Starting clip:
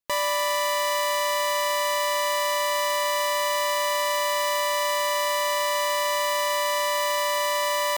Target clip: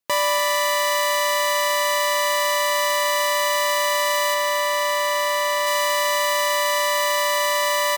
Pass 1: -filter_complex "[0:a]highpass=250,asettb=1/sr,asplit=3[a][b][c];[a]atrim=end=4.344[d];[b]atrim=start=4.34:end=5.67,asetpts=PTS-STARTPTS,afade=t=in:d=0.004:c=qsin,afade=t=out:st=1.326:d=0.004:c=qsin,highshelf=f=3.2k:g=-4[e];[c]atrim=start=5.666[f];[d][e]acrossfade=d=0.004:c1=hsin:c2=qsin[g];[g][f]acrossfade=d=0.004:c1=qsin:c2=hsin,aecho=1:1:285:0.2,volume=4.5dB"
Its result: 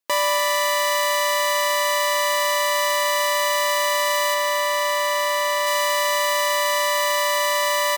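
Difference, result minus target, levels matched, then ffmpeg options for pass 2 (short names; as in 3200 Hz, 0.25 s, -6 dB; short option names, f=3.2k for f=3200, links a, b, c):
125 Hz band -10.0 dB
-filter_complex "[0:a]highpass=93,asettb=1/sr,asplit=3[a][b][c];[a]atrim=end=4.344[d];[b]atrim=start=4.34:end=5.67,asetpts=PTS-STARTPTS,afade=t=in:d=0.004:c=qsin,afade=t=out:st=1.326:d=0.004:c=qsin,highshelf=f=3.2k:g=-4[e];[c]atrim=start=5.666[f];[d][e]acrossfade=d=0.004:c1=hsin:c2=qsin[g];[g][f]acrossfade=d=0.004:c1=qsin:c2=hsin,aecho=1:1:285:0.2,volume=4.5dB"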